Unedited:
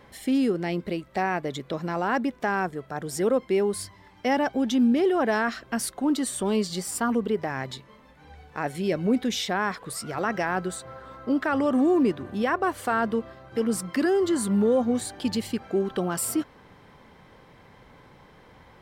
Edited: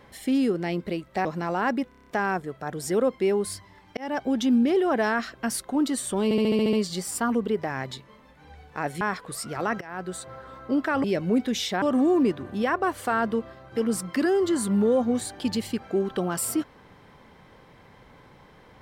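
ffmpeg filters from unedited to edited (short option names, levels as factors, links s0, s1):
-filter_complex "[0:a]asplit=20[s0][s1][s2][s3][s4][s5][s6][s7][s8][s9][s10][s11][s12][s13][s14][s15][s16][s17][s18][s19];[s0]atrim=end=1.252[s20];[s1]atrim=start=1.718:end=2.392[s21];[s2]atrim=start=2.358:end=2.392[s22];[s3]atrim=start=2.358:end=2.392[s23];[s4]atrim=start=2.358:end=2.392[s24];[s5]atrim=start=2.358:end=2.392[s25];[s6]atrim=start=2.358:end=2.392[s26];[s7]atrim=start=2.358:end=4.26,asetpts=PTS-STARTPTS,afade=t=out:st=1.898:d=0.004:c=hsin[s27];[s8]atrim=start=4.26:end=6.602,asetpts=PTS-STARTPTS,afade=t=in:d=0.26[s28];[s9]atrim=start=6.528:end=6.602[s29];[s10]atrim=start=6.528:end=6.602[s30];[s11]atrim=start=6.528:end=6.602[s31];[s12]atrim=start=6.528:end=6.602[s32];[s13]atrim=start=6.528:end=6.602[s33];[s14]atrim=start=6.528:end=6.602[s34];[s15]atrim=start=6.528:end=8.812[s35];[s16]atrim=start=9.588:end=10.39,asetpts=PTS-STARTPTS,afade=t=out:st=0.798:d=0.004:c=hsin:silence=0.0707946[s36];[s17]atrim=start=10.39:end=11.622,asetpts=PTS-STARTPTS,afade=t=in:d=0.42:silence=0.0707946[s37];[s18]atrim=start=8.808:end=9.592[s38];[s19]atrim=start=11.618[s39];[s20][s21]acrossfade=d=0.004:c1=hsin:c2=hsin[s40];[s40][s22]acrossfade=d=0.004:c1=hsin:c2=hsin[s41];[s41][s23]acrossfade=d=0.004:c1=hsin:c2=hsin[s42];[s42][s24]acrossfade=d=0.004:c1=hsin:c2=hsin[s43];[s43][s25]acrossfade=d=0.004:c1=hsin:c2=hsin[s44];[s44][s26]acrossfade=d=0.004:c1=hsin:c2=hsin[s45];[s27][s28]concat=n=2:v=0:a=1[s46];[s45][s46]acrossfade=d=0.004:c1=hsin:c2=hsin[s47];[s47][s29]acrossfade=d=0.004:c1=hsin:c2=hsin[s48];[s48][s30]acrossfade=d=0.004:c1=hsin:c2=hsin[s49];[s49][s31]acrossfade=d=0.004:c1=hsin:c2=hsin[s50];[s50][s32]acrossfade=d=0.004:c1=hsin:c2=hsin[s51];[s51][s33]acrossfade=d=0.004:c1=hsin:c2=hsin[s52];[s52][s34]acrossfade=d=0.004:c1=hsin:c2=hsin[s53];[s53][s35]acrossfade=d=0.004:c1=hsin:c2=hsin[s54];[s36][s37]concat=n=2:v=0:a=1[s55];[s54][s55]acrossfade=d=0.004:c1=hsin:c2=hsin[s56];[s56][s38]acrossfade=d=0.004:c1=hsin:c2=hsin[s57];[s57][s39]acrossfade=d=0.004:c1=hsin:c2=hsin"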